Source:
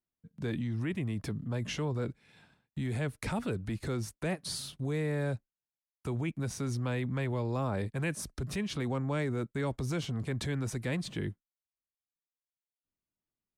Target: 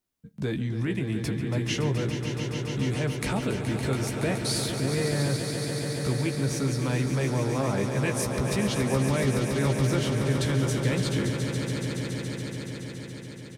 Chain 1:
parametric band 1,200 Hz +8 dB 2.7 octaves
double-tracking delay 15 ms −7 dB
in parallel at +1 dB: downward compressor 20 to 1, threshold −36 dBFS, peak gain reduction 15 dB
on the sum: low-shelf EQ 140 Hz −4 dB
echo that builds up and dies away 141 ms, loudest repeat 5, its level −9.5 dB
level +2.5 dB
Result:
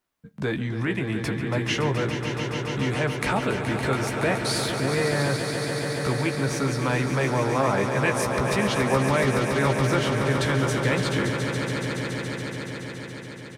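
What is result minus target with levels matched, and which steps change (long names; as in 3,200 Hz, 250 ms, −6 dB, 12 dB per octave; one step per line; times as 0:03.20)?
1,000 Hz band +6.0 dB
change: parametric band 1,200 Hz −2.5 dB 2.7 octaves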